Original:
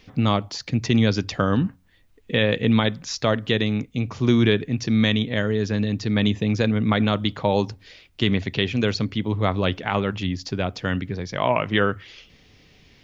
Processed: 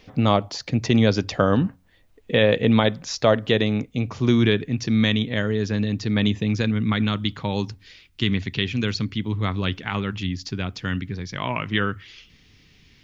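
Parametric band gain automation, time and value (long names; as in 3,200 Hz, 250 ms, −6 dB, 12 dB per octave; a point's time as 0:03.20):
parametric band 610 Hz 1.2 octaves
0:03.88 +5.5 dB
0:04.34 −2 dB
0:06.26 −2 dB
0:06.89 −11 dB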